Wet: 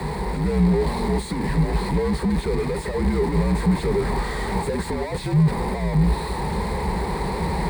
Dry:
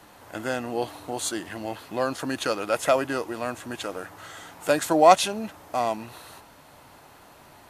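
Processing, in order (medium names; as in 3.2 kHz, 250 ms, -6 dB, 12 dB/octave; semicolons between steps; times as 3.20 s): one-bit comparator; rippled EQ curve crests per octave 0.95, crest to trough 13 dB; frequency shift -61 Hz; tilt EQ -4 dB/octave; level rider gain up to 6 dB; high-pass 59 Hz; trim -5.5 dB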